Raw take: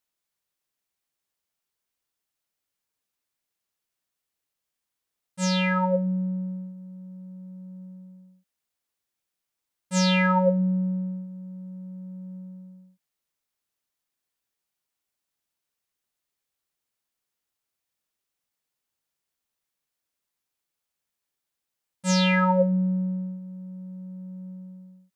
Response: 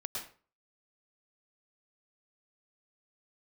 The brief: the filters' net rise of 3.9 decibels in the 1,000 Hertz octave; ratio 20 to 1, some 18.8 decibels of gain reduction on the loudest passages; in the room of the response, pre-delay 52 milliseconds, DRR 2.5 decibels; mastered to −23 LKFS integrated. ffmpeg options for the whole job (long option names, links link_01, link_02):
-filter_complex "[0:a]equalizer=frequency=1000:width_type=o:gain=4.5,acompressor=threshold=-34dB:ratio=20,asplit=2[link_01][link_02];[1:a]atrim=start_sample=2205,adelay=52[link_03];[link_02][link_03]afir=irnorm=-1:irlink=0,volume=-3.5dB[link_04];[link_01][link_04]amix=inputs=2:normalize=0,volume=17dB"